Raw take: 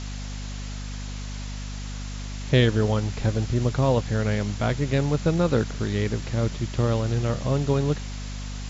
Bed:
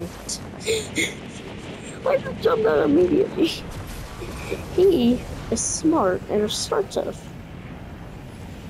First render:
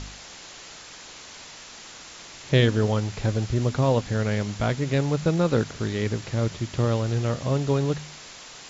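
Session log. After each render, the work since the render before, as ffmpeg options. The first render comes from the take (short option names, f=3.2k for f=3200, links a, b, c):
-af "bandreject=f=50:t=h:w=4,bandreject=f=100:t=h:w=4,bandreject=f=150:t=h:w=4,bandreject=f=200:t=h:w=4,bandreject=f=250:t=h:w=4"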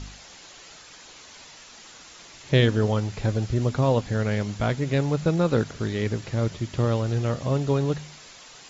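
-af "afftdn=nr=6:nf=-44"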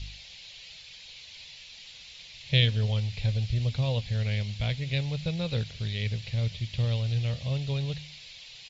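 -af "firequalizer=gain_entry='entry(100,0);entry(310,-22);entry(500,-11);entry(1300,-19);entry(2300,2);entry(4000,5);entry(6400,-10)':delay=0.05:min_phase=1"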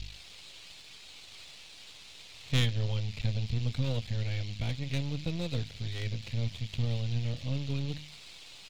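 -af "aeval=exprs='if(lt(val(0),0),0.251*val(0),val(0))':c=same"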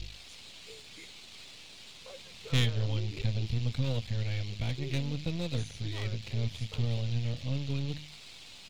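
-filter_complex "[1:a]volume=-29.5dB[a];[0:a][a]amix=inputs=2:normalize=0"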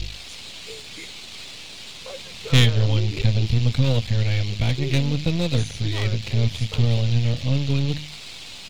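-af "volume=11.5dB"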